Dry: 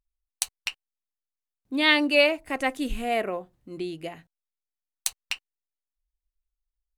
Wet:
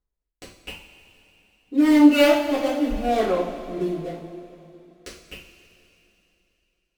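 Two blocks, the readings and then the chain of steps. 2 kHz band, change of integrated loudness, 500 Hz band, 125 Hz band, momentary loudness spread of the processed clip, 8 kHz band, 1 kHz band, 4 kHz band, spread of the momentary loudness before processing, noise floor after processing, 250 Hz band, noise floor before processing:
-4.5 dB, +6.0 dB, +5.5 dB, +7.5 dB, 23 LU, -7.0 dB, +4.0 dB, -3.5 dB, 16 LU, -80 dBFS, +11.5 dB, under -85 dBFS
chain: median filter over 25 samples; rotary cabinet horn 0.8 Hz; two-slope reverb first 0.43 s, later 3.2 s, from -15 dB, DRR -8.5 dB

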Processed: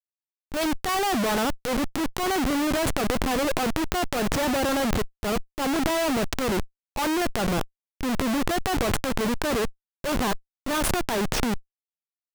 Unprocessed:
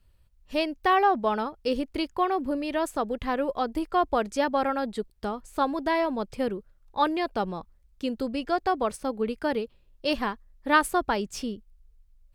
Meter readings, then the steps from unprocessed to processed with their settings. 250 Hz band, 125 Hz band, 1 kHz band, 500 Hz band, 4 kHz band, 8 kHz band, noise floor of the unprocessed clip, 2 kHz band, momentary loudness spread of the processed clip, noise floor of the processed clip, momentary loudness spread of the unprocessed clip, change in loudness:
+3.5 dB, +12.5 dB, -2.0 dB, +0.5 dB, +6.0 dB, +12.5 dB, -61 dBFS, +2.0 dB, 6 LU, under -85 dBFS, 10 LU, +1.5 dB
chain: Schmitt trigger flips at -35.5 dBFS; transient shaper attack -6 dB, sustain +11 dB; trim +4.5 dB

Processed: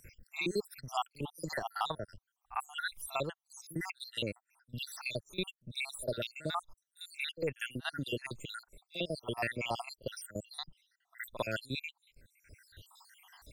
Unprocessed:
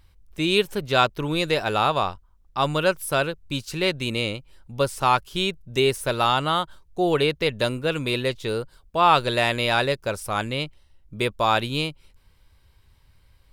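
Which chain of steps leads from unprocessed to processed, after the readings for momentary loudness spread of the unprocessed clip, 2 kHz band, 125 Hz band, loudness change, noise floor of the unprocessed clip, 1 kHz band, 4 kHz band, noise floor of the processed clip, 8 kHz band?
9 LU, -13.0 dB, -15.0 dB, -15.5 dB, -58 dBFS, -18.0 dB, -15.0 dB, under -85 dBFS, -10.0 dB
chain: random holes in the spectrogram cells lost 79%; treble shelf 7 kHz +4.5 dB; pre-echo 53 ms -24 dB; three bands compressed up and down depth 70%; trim -7.5 dB

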